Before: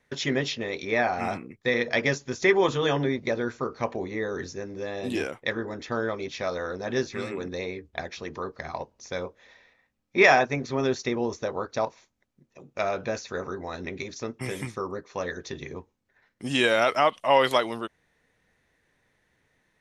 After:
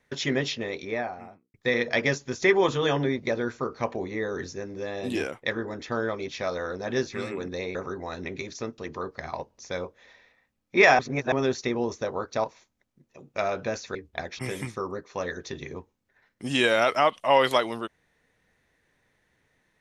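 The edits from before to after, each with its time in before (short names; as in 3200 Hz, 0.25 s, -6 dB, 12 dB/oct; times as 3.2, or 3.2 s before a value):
0.54–1.54 studio fade out
7.75–8.19 swap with 13.36–14.39
10.4–10.73 reverse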